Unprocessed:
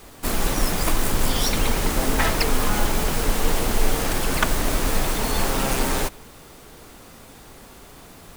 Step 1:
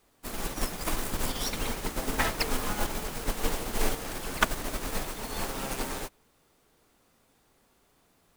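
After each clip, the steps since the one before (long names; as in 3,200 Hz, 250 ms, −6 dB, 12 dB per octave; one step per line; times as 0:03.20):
low-shelf EQ 120 Hz −5 dB
expander for the loud parts 2.5 to 1, over −30 dBFS
level −2 dB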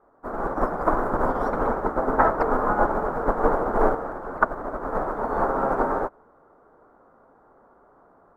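drawn EQ curve 130 Hz 0 dB, 590 Hz +13 dB, 1,400 Hz +11 dB, 2,700 Hz −25 dB, 13,000 Hz −29 dB
automatic gain control gain up to 4 dB
level −1 dB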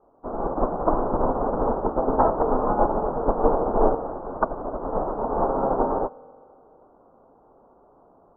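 low-pass filter 1,000 Hz 24 dB per octave
on a send at −23.5 dB: convolution reverb RT60 2.5 s, pre-delay 3 ms
on the sum: level +1.5 dB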